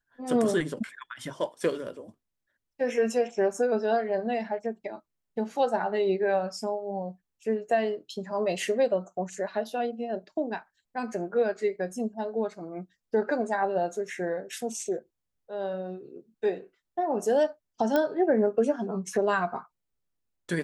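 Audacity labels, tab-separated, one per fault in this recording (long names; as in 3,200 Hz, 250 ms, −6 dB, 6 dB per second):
17.960000	17.960000	click −13 dBFS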